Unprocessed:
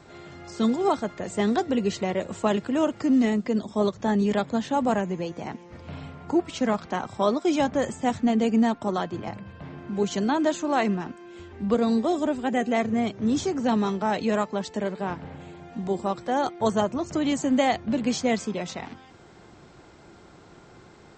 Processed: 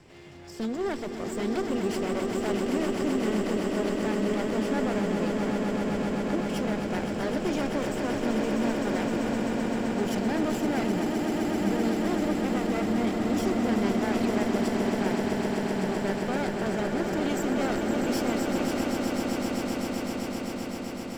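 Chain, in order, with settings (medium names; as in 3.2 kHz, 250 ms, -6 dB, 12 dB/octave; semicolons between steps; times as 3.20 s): comb filter that takes the minimum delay 0.39 ms; peak limiter -20 dBFS, peak gain reduction 8.5 dB; on a send: echo with a slow build-up 129 ms, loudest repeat 8, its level -7.5 dB; on the sum: trim -3 dB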